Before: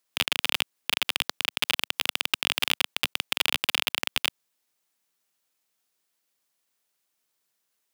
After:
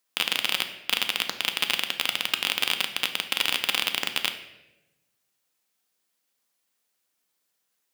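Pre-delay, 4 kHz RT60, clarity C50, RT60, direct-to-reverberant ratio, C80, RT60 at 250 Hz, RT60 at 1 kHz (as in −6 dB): 4 ms, 0.75 s, 10.0 dB, 1.0 s, 6.5 dB, 12.5 dB, 1.3 s, 0.80 s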